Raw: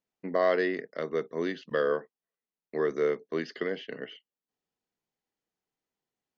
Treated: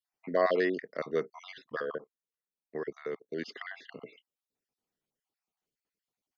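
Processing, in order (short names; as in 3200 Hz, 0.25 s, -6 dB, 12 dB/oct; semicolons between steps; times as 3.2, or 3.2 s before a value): random spectral dropouts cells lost 39%; 1.62–3.43 level quantiser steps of 17 dB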